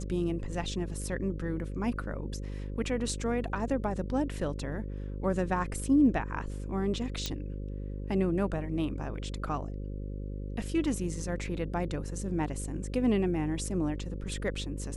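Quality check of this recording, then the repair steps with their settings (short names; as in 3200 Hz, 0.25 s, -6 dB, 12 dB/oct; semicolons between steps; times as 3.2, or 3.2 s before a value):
buzz 50 Hz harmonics 11 -37 dBFS
7.26 pop -17 dBFS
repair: de-click; de-hum 50 Hz, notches 11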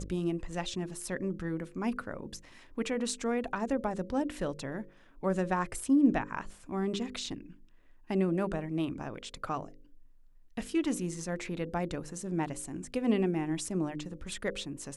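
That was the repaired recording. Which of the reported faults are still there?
none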